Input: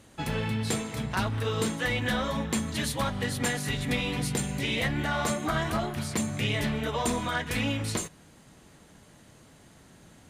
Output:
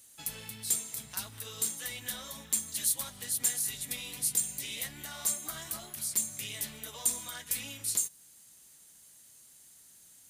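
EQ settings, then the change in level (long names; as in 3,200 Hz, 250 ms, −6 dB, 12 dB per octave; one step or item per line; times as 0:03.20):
first-order pre-emphasis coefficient 0.9
high-shelf EQ 6,400 Hz +12 dB
dynamic equaliser 2,200 Hz, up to −3 dB, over −48 dBFS, Q 0.7
−1.0 dB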